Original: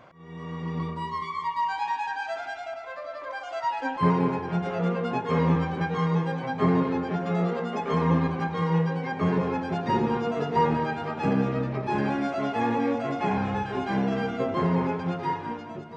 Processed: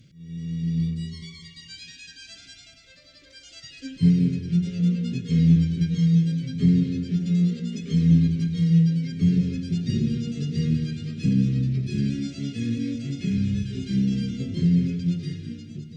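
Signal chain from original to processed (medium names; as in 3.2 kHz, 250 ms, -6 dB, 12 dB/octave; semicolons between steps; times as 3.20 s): Chebyshev band-stop 160–4800 Hz, order 2; Chebyshev shaper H 4 -45 dB, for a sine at -16.5 dBFS; trim +8.5 dB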